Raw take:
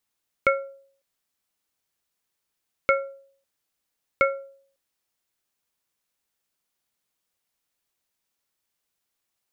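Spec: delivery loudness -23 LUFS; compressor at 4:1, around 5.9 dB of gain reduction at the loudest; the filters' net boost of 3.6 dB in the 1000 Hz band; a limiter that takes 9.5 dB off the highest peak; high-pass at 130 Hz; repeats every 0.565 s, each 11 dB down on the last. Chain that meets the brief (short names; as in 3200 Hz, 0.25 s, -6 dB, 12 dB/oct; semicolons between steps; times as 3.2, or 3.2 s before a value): HPF 130 Hz; bell 1000 Hz +6.5 dB; compressor 4:1, threshold -20 dBFS; limiter -15 dBFS; feedback echo 0.565 s, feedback 28%, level -11 dB; gain +13 dB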